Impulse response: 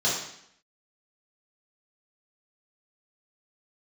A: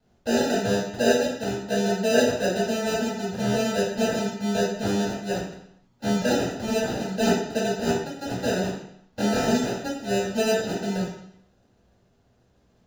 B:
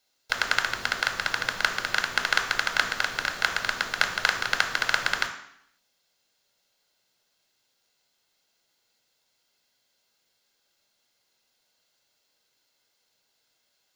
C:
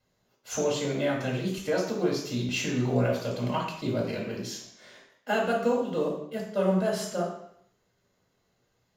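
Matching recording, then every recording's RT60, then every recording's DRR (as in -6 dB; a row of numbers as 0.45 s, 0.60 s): A; 0.70 s, 0.70 s, 0.70 s; -8.5 dB, 4.0 dB, -3.0 dB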